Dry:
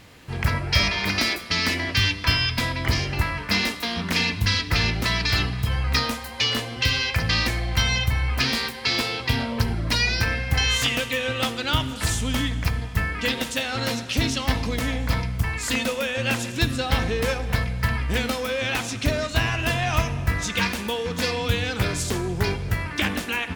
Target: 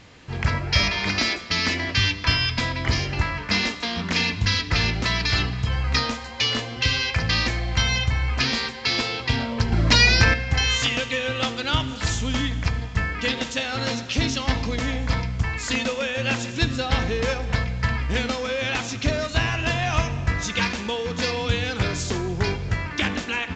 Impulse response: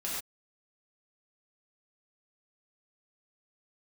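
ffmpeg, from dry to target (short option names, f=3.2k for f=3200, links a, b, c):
-filter_complex "[0:a]asettb=1/sr,asplit=3[a][b][c];[a]atrim=end=9.724[d];[b]atrim=start=9.72:end=10.34,asetpts=PTS-STARTPTS,afade=t=in:d=0.004:c=qsin,afade=t=out:st=0.616:d=0.004:c=qsin,acontrast=76[e];[c]atrim=start=10.336[f];[d][e]acrossfade=d=0.004:c1=hsin:c2=qsin[g];[g][f]acrossfade=d=0.004:c1=qsin:c2=hsin" -ar 16000 -c:a pcm_alaw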